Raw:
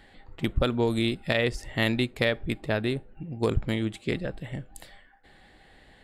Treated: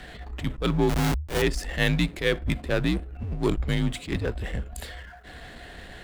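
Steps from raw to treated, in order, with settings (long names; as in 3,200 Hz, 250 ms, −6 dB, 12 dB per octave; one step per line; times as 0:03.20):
0:00.89–0:01.42: comparator with hysteresis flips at −26 dBFS
power curve on the samples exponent 0.7
frequency shifter −78 Hz
level that may rise only so fast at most 190 dB per second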